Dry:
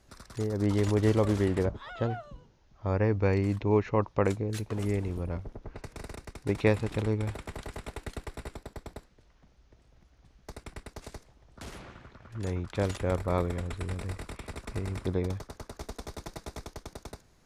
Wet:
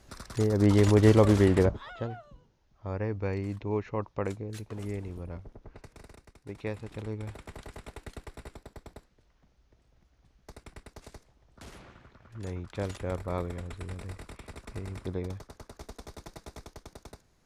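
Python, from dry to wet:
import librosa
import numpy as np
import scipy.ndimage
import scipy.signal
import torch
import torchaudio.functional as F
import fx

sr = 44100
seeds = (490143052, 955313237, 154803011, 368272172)

y = fx.gain(x, sr, db=fx.line((1.64, 5.0), (2.09, -6.0), (5.75, -6.0), (6.44, -13.0), (7.5, -4.5)))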